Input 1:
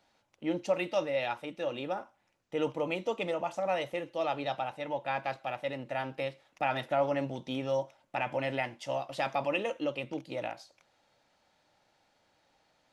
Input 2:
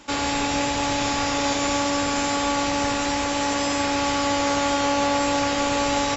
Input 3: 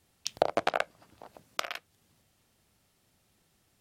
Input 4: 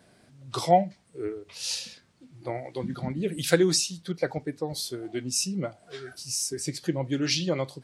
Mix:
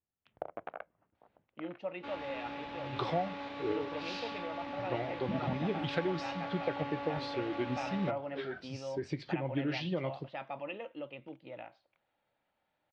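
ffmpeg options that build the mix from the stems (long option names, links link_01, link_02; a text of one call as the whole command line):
ffmpeg -i stem1.wav -i stem2.wav -i stem3.wav -i stem4.wav -filter_complex "[0:a]adelay=1150,volume=-10dB[link_01];[1:a]highpass=frequency=150:poles=1,acrusher=samples=4:mix=1:aa=0.000001,adelay=1950,volume=-18dB[link_02];[2:a]agate=range=-10dB:threshold=-58dB:ratio=16:detection=peak,lowpass=1700,volume=-14.5dB[link_03];[3:a]acompressor=threshold=-31dB:ratio=6,adelay=2450,volume=0.5dB[link_04];[link_01][link_02][link_03][link_04]amix=inputs=4:normalize=0,lowpass=frequency=3300:width=0.5412,lowpass=frequency=3300:width=1.3066" out.wav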